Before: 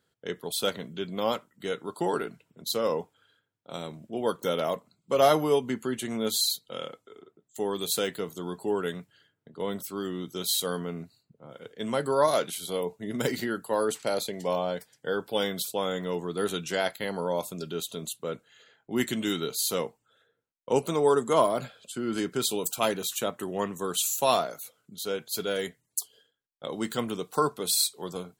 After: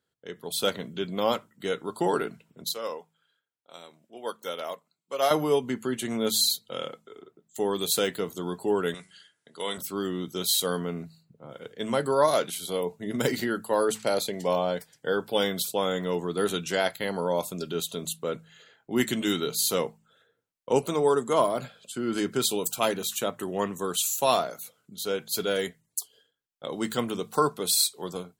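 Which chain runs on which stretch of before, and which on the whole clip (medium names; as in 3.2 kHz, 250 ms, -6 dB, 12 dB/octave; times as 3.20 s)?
2.69–5.31 s: high-pass 760 Hz 6 dB/octave + upward expansion, over -38 dBFS
8.94–9.78 s: brick-wall FIR low-pass 11 kHz + tilt EQ +4.5 dB/octave + de-hum 94.07 Hz, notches 26
whole clip: de-hum 53.92 Hz, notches 4; level rider gain up to 10 dB; trim -7 dB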